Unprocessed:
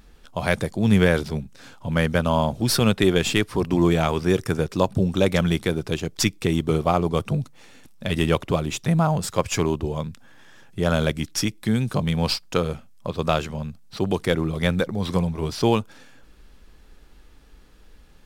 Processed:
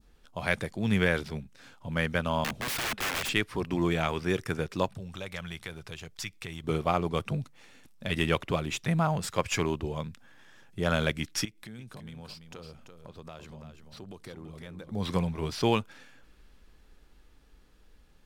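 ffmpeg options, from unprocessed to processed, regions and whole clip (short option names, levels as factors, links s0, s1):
-filter_complex "[0:a]asettb=1/sr,asplit=3[s0][s1][s2];[s0]atrim=end=2.444[s3];[s1]atrim=start=2.44:end=3.29,asetpts=PTS-STARTPTS,afade=t=in:d=0.004:c=qsin,afade=t=out:st=0.846:d=0.004:c=qsin,equalizer=f=210:t=o:w=0.23:g=6.5,aeval=exprs='(mod(9.44*val(0)+1,2)-1)/9.44':c=same[s4];[s2]atrim=start=3.286[s5];[s3][s4]acrossfade=d=0.004:c1=hsin:c2=qsin[s6];[s6][s5]acrossfade=d=0.004:c1=qsin:c2=hsin,asettb=1/sr,asplit=3[s7][s8][s9];[s7]atrim=end=4.884[s10];[s8]atrim=start=4.88:end=6.64,asetpts=PTS-STARTPTS,afade=t=in:d=0.004:c=qsin,afade=t=out:st=1.756:d=0.004:c=qsin,equalizer=f=290:t=o:w=1.6:g=-10.5,acompressor=threshold=0.0251:ratio=2:attack=3.2:release=140:knee=1:detection=peak[s11];[s9]atrim=start=6.636[s12];[s10][s11]acrossfade=d=0.004:c1=hsin:c2=qsin[s13];[s13][s12]acrossfade=d=0.004:c1=qsin:c2=hsin,asettb=1/sr,asplit=3[s14][s15][s16];[s14]atrim=end=11.454[s17];[s15]atrim=start=11.45:end=14.92,asetpts=PTS-STARTPTS,afade=t=in:d=0.004:c=qsin,afade=t=out:st=3.466:d=0.004:c=qsin,acompressor=threshold=0.01:ratio=3:attack=3.2:release=140:knee=1:detection=peak,aecho=1:1:338:0.398,atrim=end_sample=153027[s18];[s16]atrim=start=14.916[s19];[s17][s18]acrossfade=d=0.004:c1=hsin:c2=qsin[s20];[s20][s19]acrossfade=d=0.004:c1=qsin:c2=hsin,adynamicequalizer=threshold=0.01:dfrequency=2100:dqfactor=0.84:tfrequency=2100:tqfactor=0.84:attack=5:release=100:ratio=0.375:range=3.5:mode=boostabove:tftype=bell,dynaudnorm=f=820:g=9:m=3.76,volume=0.376"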